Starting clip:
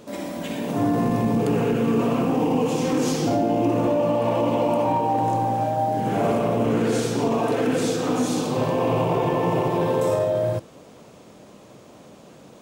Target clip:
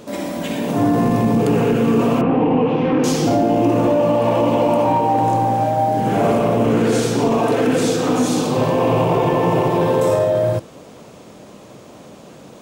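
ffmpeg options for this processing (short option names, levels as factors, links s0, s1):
-filter_complex "[0:a]asettb=1/sr,asplit=3[s0][s1][s2];[s0]atrim=end=2.214[s3];[s1]atrim=start=2.21:end=3.04,asetpts=PTS-STARTPTS,afade=t=in:d=0.004:c=qsin,afade=t=out:st=0.826:d=0.004:c=qsin,lowpass=f=2800:w=0.5412,lowpass=f=2800:w=1.3066[s4];[s2]atrim=start=3.036[s5];[s3][s4]acrossfade=d=0.004:c1=hsin:c2=qsin[s6];[s6][s5]acrossfade=d=0.004:c1=qsin:c2=hsin,asplit=2[s7][s8];[s8]asoftclip=type=tanh:threshold=0.0841,volume=0.282[s9];[s7][s9]amix=inputs=2:normalize=0,volume=1.58"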